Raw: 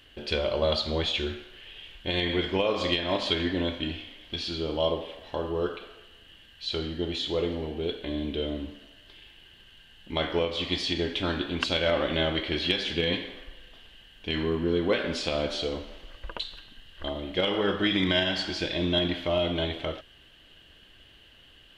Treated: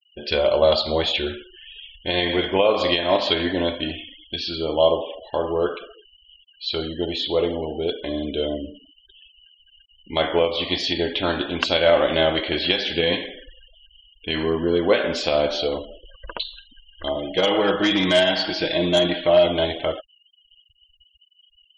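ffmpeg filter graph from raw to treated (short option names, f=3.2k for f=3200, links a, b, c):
-filter_complex "[0:a]asettb=1/sr,asplit=3[a][b][c];[a]atrim=end=17.164[d];[b]atrim=start=17.16:end=19.46,asetpts=PTS-STARTPTS,afade=t=in:d=0.004:c=qsin,afade=t=out:st=2.296:d=0.004:c=qsin,lowpass=7.1k,volume=20.5dB,asoftclip=hard,volume=-20.5dB,aecho=1:1:6.3:0.45,atrim=end_sample=101430[e];[c]atrim=start=19.456[f];[d][e]acrossfade=d=0.004:c1=hsin:c2=qsin[g];[g][f]acrossfade=d=0.004:c1=qsin:c2=hsin,lowshelf=f=220:g=-6,afftfilt=real='re*gte(hypot(re,im),0.00891)':imag='im*gte(hypot(re,im),0.00891)':win_size=1024:overlap=0.75,adynamicequalizer=threshold=0.00891:dfrequency=670:dqfactor=1.3:tfrequency=670:tqfactor=1.3:attack=5:release=100:ratio=0.375:range=3:mode=boostabove:tftype=bell,volume=5.5dB"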